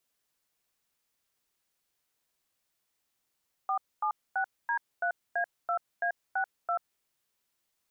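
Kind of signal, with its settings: DTMF "476D3A2A62", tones 87 ms, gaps 0.246 s, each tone -29 dBFS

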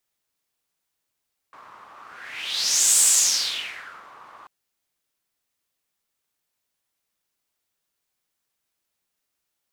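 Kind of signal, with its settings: whoosh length 2.94 s, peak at 1.48, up 1.11 s, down 1.17 s, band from 1100 Hz, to 7900 Hz, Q 4.4, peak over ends 30 dB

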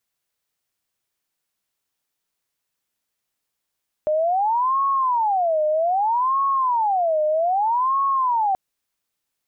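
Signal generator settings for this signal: siren wail 610–1100 Hz 0.63/s sine -17 dBFS 4.48 s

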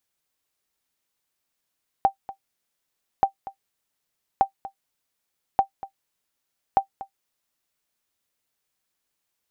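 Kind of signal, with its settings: sonar ping 783 Hz, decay 0.10 s, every 1.18 s, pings 5, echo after 0.24 s, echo -17 dB -8 dBFS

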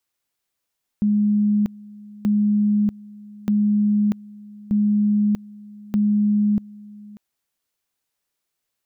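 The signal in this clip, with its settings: two-level tone 208 Hz -15 dBFS, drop 22.5 dB, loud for 0.64 s, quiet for 0.59 s, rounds 5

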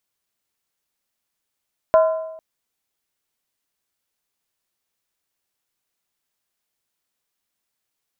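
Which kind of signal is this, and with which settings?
skin hit length 0.45 s, lowest mode 641 Hz, modes 5, decay 0.93 s, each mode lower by 8.5 dB, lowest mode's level -8.5 dB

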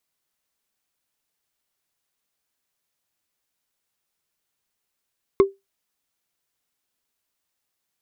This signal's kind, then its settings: wood hit, lowest mode 392 Hz, decay 0.19 s, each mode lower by 8.5 dB, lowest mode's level -7 dB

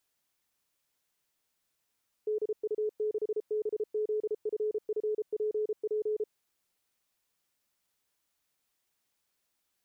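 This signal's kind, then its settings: Morse "DU6BZFFPP" 33 wpm 427 Hz -27.5 dBFS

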